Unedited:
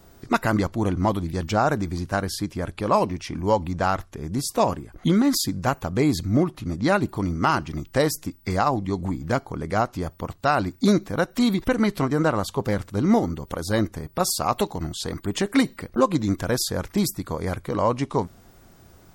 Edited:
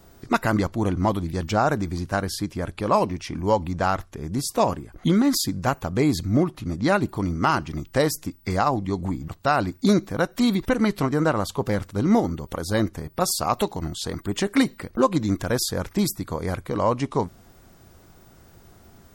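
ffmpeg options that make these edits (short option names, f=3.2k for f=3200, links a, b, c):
-filter_complex "[0:a]asplit=2[a][b];[a]atrim=end=9.282[c];[b]atrim=start=10.268[d];[c][d]acrossfade=d=0.004:c1=hsin:c2=hsin"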